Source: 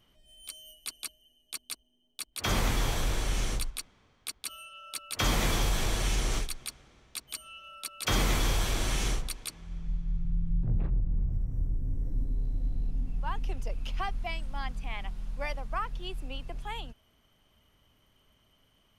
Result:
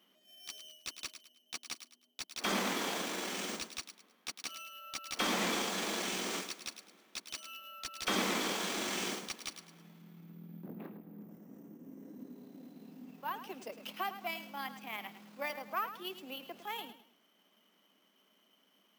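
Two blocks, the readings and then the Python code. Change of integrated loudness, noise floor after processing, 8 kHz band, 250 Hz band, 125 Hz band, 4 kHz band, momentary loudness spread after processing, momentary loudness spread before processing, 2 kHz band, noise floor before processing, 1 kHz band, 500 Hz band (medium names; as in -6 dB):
-4.5 dB, -71 dBFS, -4.5 dB, -2.5 dB, -19.0 dB, -2.5 dB, 19 LU, 13 LU, -2.0 dB, -68 dBFS, -2.0 dB, -2.0 dB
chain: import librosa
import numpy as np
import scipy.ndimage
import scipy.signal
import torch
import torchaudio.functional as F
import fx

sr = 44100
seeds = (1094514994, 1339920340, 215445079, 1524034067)

y = np.where(x < 0.0, 10.0 ** (-3.0 / 20.0) * x, x)
y = np.repeat(y[::3], 3)[:len(y)]
y = scipy.signal.sosfilt(scipy.signal.cheby1(5, 1.0, 190.0, 'highpass', fs=sr, output='sos'), y)
y = fx.peak_eq(y, sr, hz=9400.0, db=-5.5, octaves=0.21)
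y = fx.echo_feedback(y, sr, ms=105, feedback_pct=31, wet_db=-12)
y = fx.slew_limit(y, sr, full_power_hz=110.0)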